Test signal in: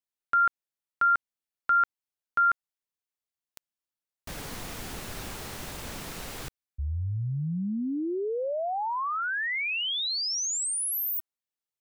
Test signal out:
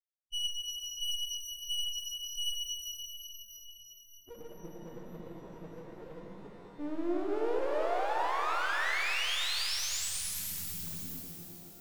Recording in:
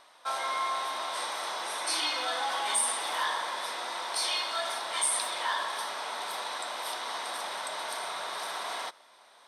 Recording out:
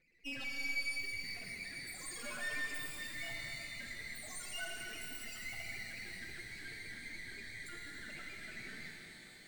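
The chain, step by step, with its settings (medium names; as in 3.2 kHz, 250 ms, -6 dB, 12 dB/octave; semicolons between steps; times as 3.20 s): hum notches 60/120/180 Hz; vibrato 9.4 Hz 9.8 cents; peaking EQ 170 Hz +10 dB 0.42 oct; peak limiter -25 dBFS; loudest bins only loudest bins 2; frequency shift +75 Hz; full-wave rectifier; bass shelf 110 Hz -10 dB; filtered feedback delay 538 ms, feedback 60%, low-pass 2.1 kHz, level -23 dB; pitch-shifted reverb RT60 3.7 s, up +12 st, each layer -8 dB, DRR -0.5 dB; trim +2 dB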